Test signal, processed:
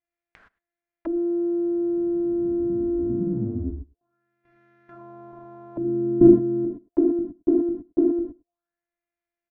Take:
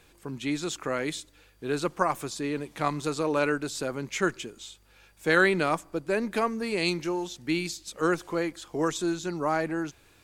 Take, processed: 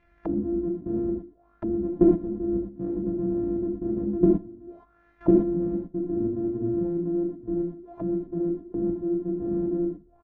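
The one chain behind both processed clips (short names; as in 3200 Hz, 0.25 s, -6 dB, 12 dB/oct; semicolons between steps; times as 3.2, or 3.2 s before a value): sample sorter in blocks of 128 samples; low shelf 100 Hz +11 dB; transient shaper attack +7 dB, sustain -4 dB; level quantiser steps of 16 dB; modulation noise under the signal 17 dB; outdoor echo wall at 18 m, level -24 dB; non-linear reverb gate 0.14 s flat, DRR -3.5 dB; envelope low-pass 300–2200 Hz down, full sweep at -32.5 dBFS; gain -2 dB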